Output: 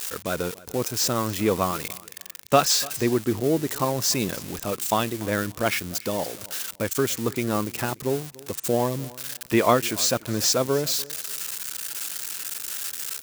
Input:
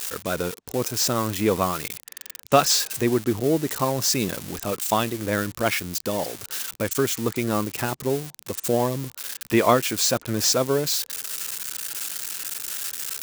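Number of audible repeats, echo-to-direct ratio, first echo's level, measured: 2, −21.0 dB, −21.0 dB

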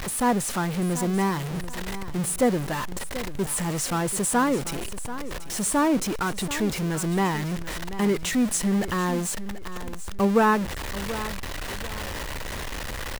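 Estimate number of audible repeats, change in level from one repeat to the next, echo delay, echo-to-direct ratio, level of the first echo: 2, −10.0 dB, 735 ms, −13.0 dB, −13.5 dB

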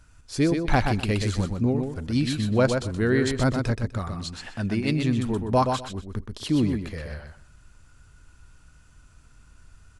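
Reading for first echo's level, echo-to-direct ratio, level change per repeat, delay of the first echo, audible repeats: −5.5 dB, −5.5 dB, −14.5 dB, 125 ms, 3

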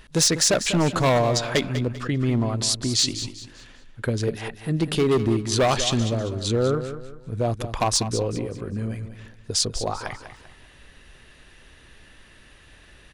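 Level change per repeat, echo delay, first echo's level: −9.5 dB, 196 ms, −11.0 dB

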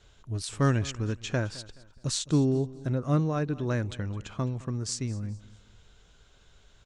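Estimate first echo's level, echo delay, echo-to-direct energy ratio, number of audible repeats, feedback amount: −19.5 dB, 212 ms, −19.0 dB, 2, 35%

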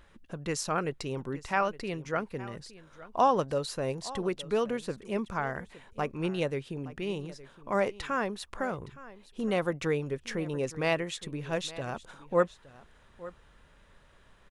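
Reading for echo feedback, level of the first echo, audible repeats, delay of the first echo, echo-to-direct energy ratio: repeats not evenly spaced, −18.0 dB, 1, 866 ms, −18.0 dB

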